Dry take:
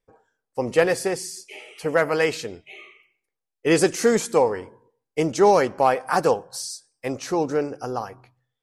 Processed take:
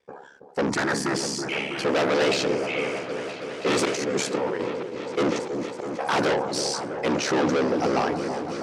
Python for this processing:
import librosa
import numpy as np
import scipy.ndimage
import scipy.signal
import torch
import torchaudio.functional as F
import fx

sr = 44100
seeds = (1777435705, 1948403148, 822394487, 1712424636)

p1 = fx.auto_swell(x, sr, attack_ms=694.0, at=(3.85, 4.6))
p2 = fx.gate_flip(p1, sr, shuts_db=-17.0, range_db=-41, at=(5.29, 5.98), fade=0.02)
p3 = p2 * np.sin(2.0 * np.pi * 35.0 * np.arange(len(p2)) / sr)
p4 = fx.fold_sine(p3, sr, drive_db=14, ceiling_db=-6.5)
p5 = p3 + F.gain(torch.from_numpy(p4), -3.5).numpy()
p6 = fx.fixed_phaser(p5, sr, hz=1200.0, stages=4, at=(0.7, 1.15))
p7 = 10.0 ** (-19.5 / 20.0) * np.tanh(p6 / 10.0 ** (-19.5 / 20.0))
p8 = fx.bandpass_edges(p7, sr, low_hz=170.0, high_hz=5200.0)
p9 = p8 + fx.echo_opening(p8, sr, ms=325, hz=750, octaves=1, feedback_pct=70, wet_db=-6, dry=0)
y = fx.sustainer(p9, sr, db_per_s=60.0)